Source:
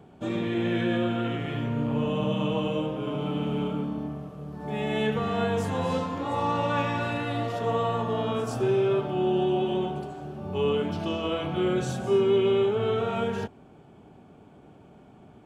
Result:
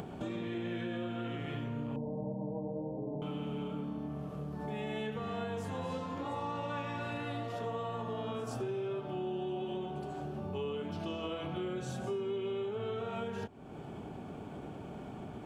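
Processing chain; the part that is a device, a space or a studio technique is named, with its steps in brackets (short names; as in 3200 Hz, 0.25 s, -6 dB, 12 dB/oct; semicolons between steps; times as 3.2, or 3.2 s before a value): 1.96–3.22 steep low-pass 930 Hz 96 dB/oct; upward and downward compression (upward compressor, threshold -28 dBFS; compressor 4:1, threshold -31 dBFS, peak gain reduction 11 dB); gain -4.5 dB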